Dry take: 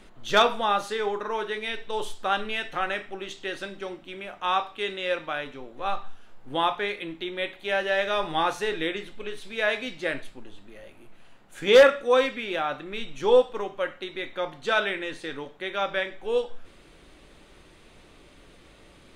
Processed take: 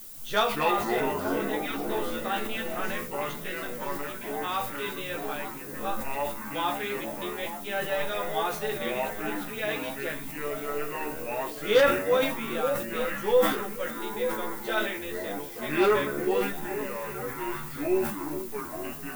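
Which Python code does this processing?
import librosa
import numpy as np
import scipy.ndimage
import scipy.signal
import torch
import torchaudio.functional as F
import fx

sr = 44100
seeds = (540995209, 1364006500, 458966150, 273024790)

y = fx.echo_pitch(x, sr, ms=119, semitones=-5, count=3, db_per_echo=-3.0)
y = fx.dmg_noise_colour(y, sr, seeds[0], colour='violet', level_db=-38.0)
y = fx.doubler(y, sr, ms=14.0, db=-2)
y = fx.echo_stepped(y, sr, ms=439, hz=230.0, octaves=1.4, feedback_pct=70, wet_db=-5)
y = fx.sustainer(y, sr, db_per_s=76.0)
y = F.gain(torch.from_numpy(y), -8.0).numpy()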